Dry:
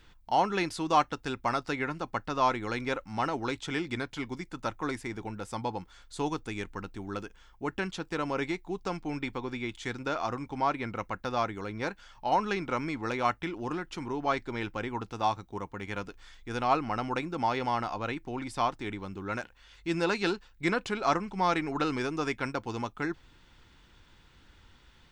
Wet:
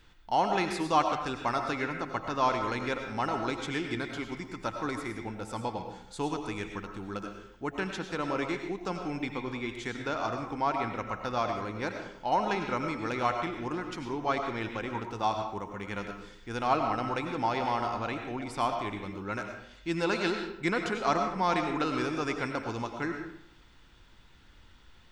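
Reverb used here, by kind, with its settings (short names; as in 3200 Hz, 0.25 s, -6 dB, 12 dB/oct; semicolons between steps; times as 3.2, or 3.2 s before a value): digital reverb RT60 0.73 s, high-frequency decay 0.7×, pre-delay 60 ms, DRR 4.5 dB; gain -1 dB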